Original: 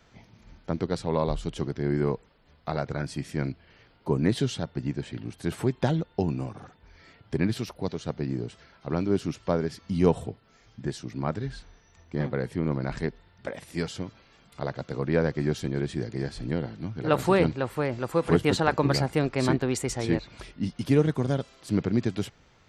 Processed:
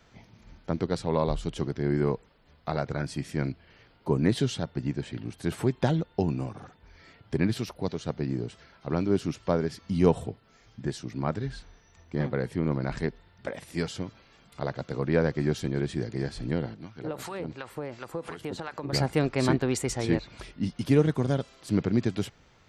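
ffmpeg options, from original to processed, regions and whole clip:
-filter_complex "[0:a]asettb=1/sr,asplit=3[s0][s1][s2];[s0]atrim=end=16.744[s3];[s1]atrim=start=16.74:end=18.93,asetpts=PTS-STARTPTS,afade=t=in:d=0.004:c=qsin,afade=t=out:st=2.186:d=0.004:c=qsin,lowshelf=f=190:g=-7,acompressor=threshold=0.0447:ratio=10:attack=3.2:release=140:knee=1:detection=peak,acrossover=split=870[s4][s5];[s4]aeval=exprs='val(0)*(1-0.7/2+0.7/2*cos(2*PI*2.8*n/s))':c=same[s6];[s5]aeval=exprs='val(0)*(1-0.7/2-0.7/2*cos(2*PI*2.8*n/s))':c=same[s7];[s6][s7]amix=inputs=2:normalize=0[s8];[s2]atrim=start=18.926[s9];[s3][s8]acrossfade=d=0.004:c1=hsin:c2=qsin[s10];[s10][s9]acrossfade=d=0.004:c1=qsin:c2=hsin"

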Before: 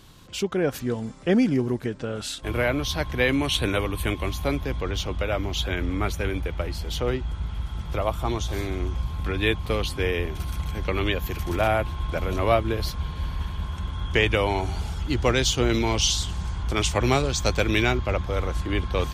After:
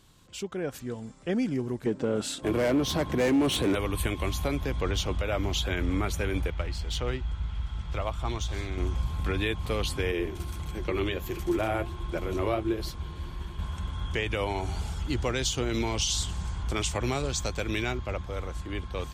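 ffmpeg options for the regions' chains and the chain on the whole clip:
-filter_complex "[0:a]asettb=1/sr,asplit=3[s0][s1][s2];[s0]atrim=end=1.864[s3];[s1]atrim=start=1.86:end=3.75,asetpts=PTS-STARTPTS,afade=t=in:d=0.004:c=qsin,afade=t=out:st=1.886:d=0.004:c=qsin,highpass=f=130:p=1,asoftclip=type=hard:threshold=0.0596,equalizer=f=290:w=0.43:g=12[s4];[s2]atrim=start=3.746[s5];[s3][s4]acrossfade=d=0.004:c1=hsin:c2=qsin[s6];[s6][s5]acrossfade=d=0.004:c1=qsin:c2=hsin,asettb=1/sr,asplit=3[s7][s8][s9];[s7]atrim=end=6.504[s10];[s8]atrim=start=6.5:end=8.78,asetpts=PTS-STARTPTS,afade=t=in:d=0.004:c=qsin,afade=t=out:st=2.276:d=0.004:c=qsin,equalizer=f=360:w=0.34:g=-7,adynamicsmooth=sensitivity=5:basefreq=5700[s11];[s9]atrim=start=8.776[s12];[s10][s11]acrossfade=d=0.004:c1=hsin:c2=qsin[s13];[s13][s12]acrossfade=d=0.004:c1=qsin:c2=hsin,asettb=1/sr,asplit=3[s14][s15][s16];[s14]atrim=end=10.124[s17];[s15]atrim=start=10.12:end=13.59,asetpts=PTS-STARTPTS,afade=t=in:d=0.004:c=qsin,afade=t=out:st=3.466:d=0.004:c=qsin,equalizer=f=350:t=o:w=0.3:g=11.5,flanger=delay=5.1:depth=6.3:regen=-59:speed=1.5:shape=sinusoidal[s18];[s16]atrim=start=13.586[s19];[s17][s18]acrossfade=d=0.004:c1=hsin:c2=qsin[s20];[s20][s19]acrossfade=d=0.004:c1=qsin:c2=hsin,dynaudnorm=f=400:g=11:m=3.76,alimiter=limit=0.355:level=0:latency=1:release=117,equalizer=f=7800:t=o:w=0.43:g=5.5,volume=0.355"

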